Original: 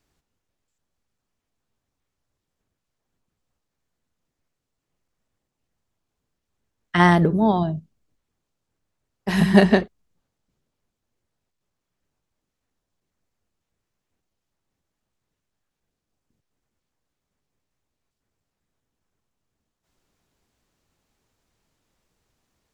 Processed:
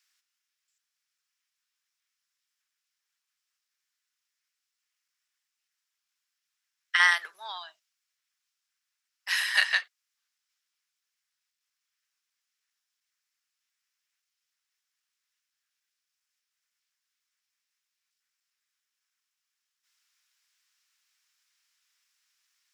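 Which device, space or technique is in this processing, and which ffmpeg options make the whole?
headphones lying on a table: -af "highpass=160,highpass=frequency=1500:width=0.5412,highpass=frequency=1500:width=1.3066,equalizer=frequency=5300:width_type=o:width=0.24:gain=5.5,volume=2.5dB"

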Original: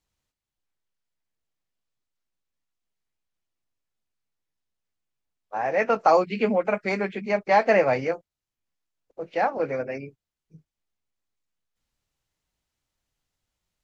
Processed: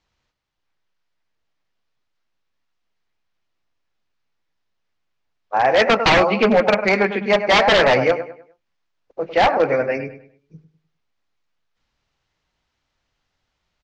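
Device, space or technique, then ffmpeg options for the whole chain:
synthesiser wavefolder: -filter_complex "[0:a]equalizer=frequency=1300:width=0.41:gain=5,asplit=2[link_01][link_02];[link_02]adelay=101,lowpass=frequency=3900:poles=1,volume=-11.5dB,asplit=2[link_03][link_04];[link_04]adelay=101,lowpass=frequency=3900:poles=1,volume=0.35,asplit=2[link_05][link_06];[link_06]adelay=101,lowpass=frequency=3900:poles=1,volume=0.35,asplit=2[link_07][link_08];[link_08]adelay=101,lowpass=frequency=3900:poles=1,volume=0.35[link_09];[link_01][link_03][link_05][link_07][link_09]amix=inputs=5:normalize=0,aeval=exprs='0.188*(abs(mod(val(0)/0.188+3,4)-2)-1)':channel_layout=same,lowpass=frequency=5900:width=0.5412,lowpass=frequency=5900:width=1.3066,volume=6.5dB"

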